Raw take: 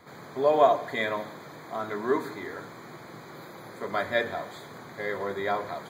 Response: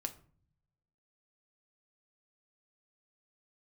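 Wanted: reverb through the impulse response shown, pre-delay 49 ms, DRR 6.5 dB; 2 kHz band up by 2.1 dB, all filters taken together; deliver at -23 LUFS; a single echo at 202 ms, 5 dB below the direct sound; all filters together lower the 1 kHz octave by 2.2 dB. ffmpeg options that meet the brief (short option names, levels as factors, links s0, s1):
-filter_complex "[0:a]equalizer=f=1000:t=o:g=-4,equalizer=f=2000:t=o:g=3.5,aecho=1:1:202:0.562,asplit=2[s0][s1];[1:a]atrim=start_sample=2205,adelay=49[s2];[s1][s2]afir=irnorm=-1:irlink=0,volume=0.531[s3];[s0][s3]amix=inputs=2:normalize=0,volume=1.68"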